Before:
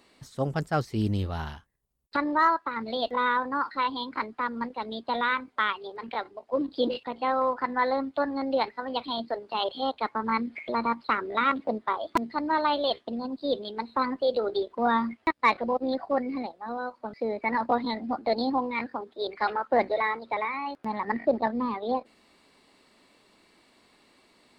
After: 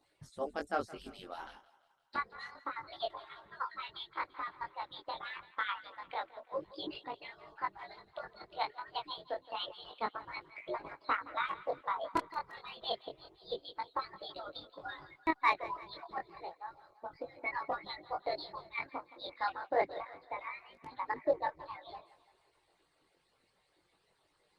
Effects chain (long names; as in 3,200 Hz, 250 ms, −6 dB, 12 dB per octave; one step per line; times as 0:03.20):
harmonic-percussive split with one part muted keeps percussive
0:19.99–0:20.39: high-shelf EQ 2,600 Hz → 2,000 Hz −8 dB
feedback echo with a high-pass in the loop 169 ms, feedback 54%, high-pass 360 Hz, level −17 dB
chorus effect 0.28 Hz, delay 19.5 ms, depth 3.8 ms
level −3 dB
Opus 32 kbit/s 48,000 Hz